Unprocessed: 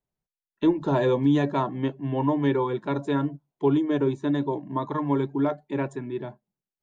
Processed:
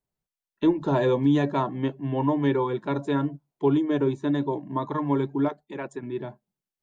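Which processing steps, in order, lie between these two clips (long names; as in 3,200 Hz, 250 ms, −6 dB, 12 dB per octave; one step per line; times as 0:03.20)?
0:05.48–0:06.03: harmonic and percussive parts rebalanced harmonic −14 dB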